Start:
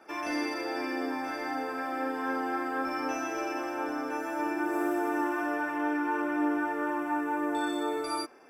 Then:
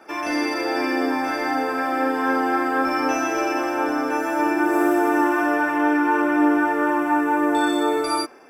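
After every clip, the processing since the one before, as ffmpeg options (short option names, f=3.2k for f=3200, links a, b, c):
-af "dynaudnorm=f=210:g=5:m=3dB,volume=7.5dB"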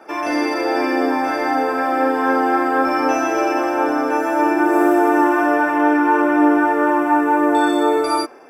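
-af "equalizer=f=600:w=0.55:g=6"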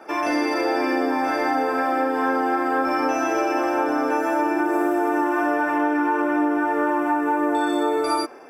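-af "acompressor=threshold=-18dB:ratio=6"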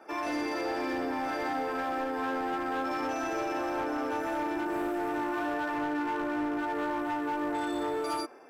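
-af "volume=18.5dB,asoftclip=hard,volume=-18.5dB,volume=-9dB"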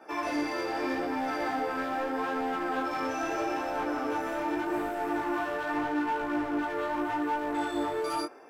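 -af "flanger=delay=15.5:depth=6.7:speed=0.81,volume=4dB"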